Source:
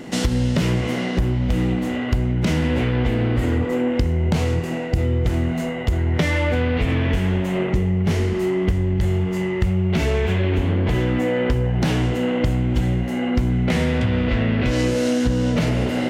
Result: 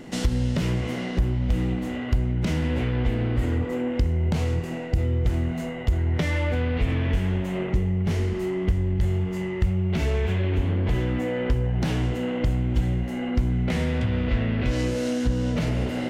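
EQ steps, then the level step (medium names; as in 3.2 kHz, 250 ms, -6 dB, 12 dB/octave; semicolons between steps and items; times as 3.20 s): bass shelf 60 Hz +10.5 dB; -6.5 dB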